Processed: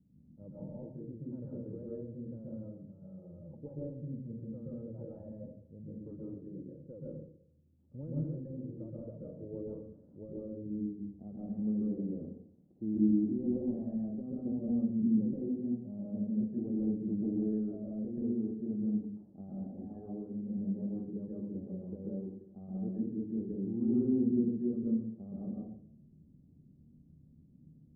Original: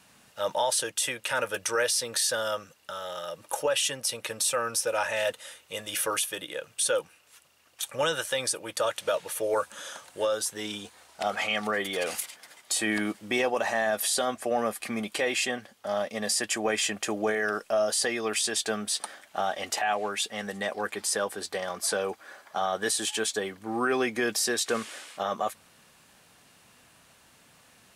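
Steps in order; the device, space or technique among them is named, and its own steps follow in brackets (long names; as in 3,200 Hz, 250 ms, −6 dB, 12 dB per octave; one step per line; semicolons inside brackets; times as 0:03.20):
next room (low-pass filter 260 Hz 24 dB per octave; convolution reverb RT60 0.60 s, pre-delay 119 ms, DRR −5.5 dB)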